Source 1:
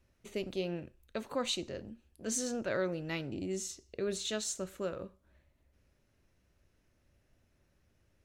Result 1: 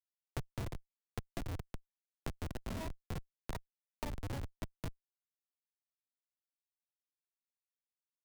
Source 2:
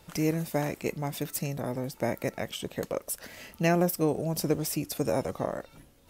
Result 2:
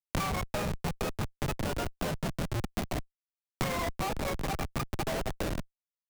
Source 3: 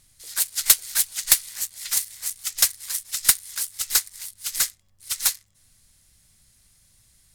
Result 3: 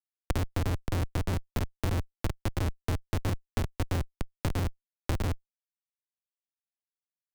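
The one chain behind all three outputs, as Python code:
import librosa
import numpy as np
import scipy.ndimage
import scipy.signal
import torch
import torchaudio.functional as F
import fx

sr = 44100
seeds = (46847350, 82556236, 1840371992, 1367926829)

y = fx.octave_mirror(x, sr, pivot_hz=600.0)
y = fx.schmitt(y, sr, flips_db=-31.5)
y = fx.band_squash(y, sr, depth_pct=100)
y = y * librosa.db_to_amplitude(2.0)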